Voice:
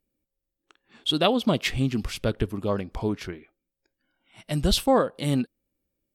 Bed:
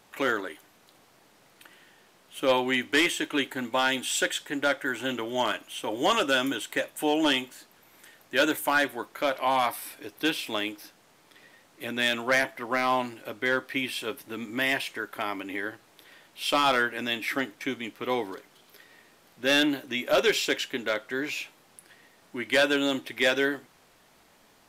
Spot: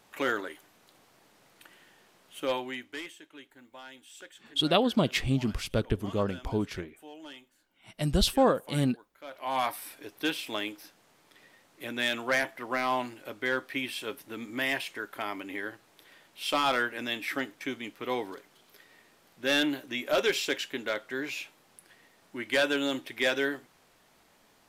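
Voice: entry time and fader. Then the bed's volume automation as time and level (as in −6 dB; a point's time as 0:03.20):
3.50 s, −2.5 dB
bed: 0:02.30 −2.5 dB
0:03.25 −22.5 dB
0:09.16 −22.5 dB
0:09.59 −3.5 dB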